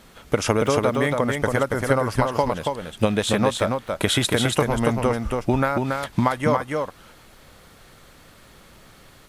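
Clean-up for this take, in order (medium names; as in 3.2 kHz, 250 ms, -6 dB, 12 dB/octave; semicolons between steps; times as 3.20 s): expander -42 dBFS, range -21 dB; inverse comb 280 ms -4 dB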